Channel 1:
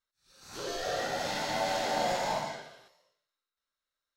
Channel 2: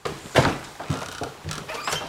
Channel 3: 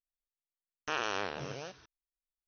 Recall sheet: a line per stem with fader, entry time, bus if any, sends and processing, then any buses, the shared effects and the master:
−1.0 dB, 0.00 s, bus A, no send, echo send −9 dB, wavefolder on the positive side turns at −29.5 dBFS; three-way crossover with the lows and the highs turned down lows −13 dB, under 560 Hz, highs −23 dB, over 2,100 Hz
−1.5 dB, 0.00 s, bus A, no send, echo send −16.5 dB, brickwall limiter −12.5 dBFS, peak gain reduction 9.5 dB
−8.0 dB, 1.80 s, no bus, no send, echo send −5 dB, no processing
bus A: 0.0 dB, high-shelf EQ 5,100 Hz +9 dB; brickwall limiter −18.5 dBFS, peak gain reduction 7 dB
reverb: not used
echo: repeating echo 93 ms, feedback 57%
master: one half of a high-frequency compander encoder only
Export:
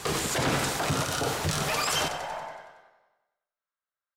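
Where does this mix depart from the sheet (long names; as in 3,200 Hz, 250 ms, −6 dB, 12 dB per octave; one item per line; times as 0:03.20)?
stem 2 −1.5 dB → +8.5 dB
stem 3: muted
master: missing one half of a high-frequency compander encoder only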